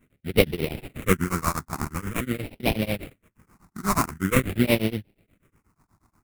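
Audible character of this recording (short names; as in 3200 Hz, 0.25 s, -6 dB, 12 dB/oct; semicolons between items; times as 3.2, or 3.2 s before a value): a buzz of ramps at a fixed pitch in blocks of 8 samples; tremolo triangle 8.3 Hz, depth 100%; aliases and images of a low sample rate 1700 Hz, jitter 20%; phasing stages 4, 0.46 Hz, lowest notch 500–1200 Hz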